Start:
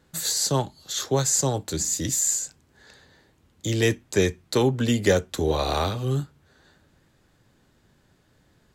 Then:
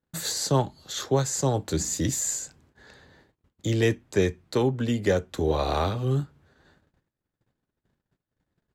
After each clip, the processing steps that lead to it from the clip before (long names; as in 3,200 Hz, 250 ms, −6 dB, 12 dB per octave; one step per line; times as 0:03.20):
noise gate −58 dBFS, range −27 dB
high-shelf EQ 3,300 Hz −9 dB
speech leveller within 4 dB 0.5 s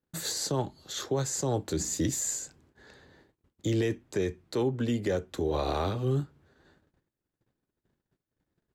parametric band 350 Hz +4.5 dB 0.83 octaves
brickwall limiter −16 dBFS, peak gain reduction 8 dB
level −3.5 dB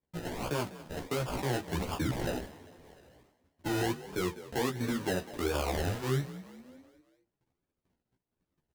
sample-and-hold swept by an LFO 31×, swing 60% 1.4 Hz
echo with shifted repeats 199 ms, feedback 53%, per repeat +40 Hz, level −16.5 dB
multi-voice chorus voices 2, 1.1 Hz, delay 14 ms, depth 3 ms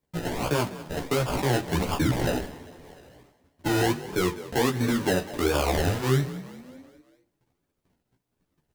convolution reverb RT60 0.85 s, pre-delay 7 ms, DRR 15.5 dB
level +7.5 dB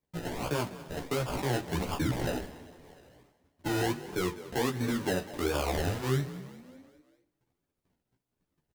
single-tap delay 286 ms −23.5 dB
level −6 dB